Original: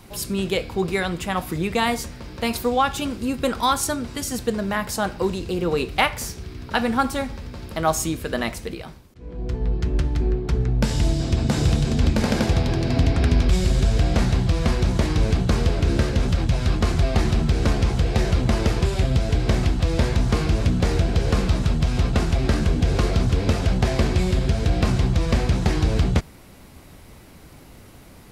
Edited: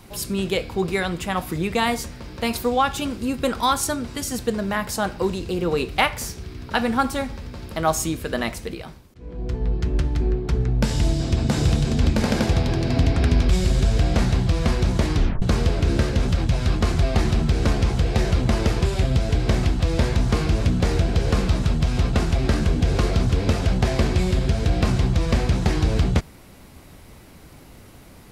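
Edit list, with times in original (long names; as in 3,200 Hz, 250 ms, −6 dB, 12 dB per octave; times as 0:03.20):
0:15.16: tape stop 0.26 s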